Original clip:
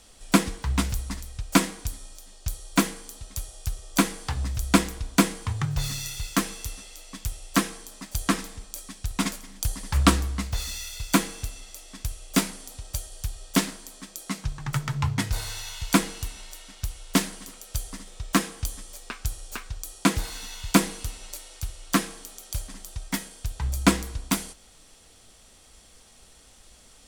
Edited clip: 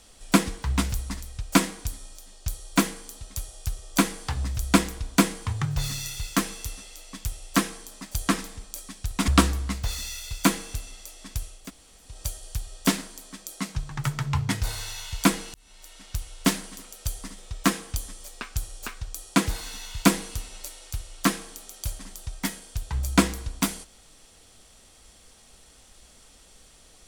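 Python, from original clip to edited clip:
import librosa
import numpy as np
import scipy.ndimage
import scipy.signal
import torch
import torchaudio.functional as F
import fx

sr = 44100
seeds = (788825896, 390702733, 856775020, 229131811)

y = fx.edit(x, sr, fx.cut(start_s=9.28, length_s=0.69),
    fx.room_tone_fill(start_s=12.28, length_s=0.5, crossfade_s=0.24),
    fx.fade_in_span(start_s=16.23, length_s=0.56), tone=tone)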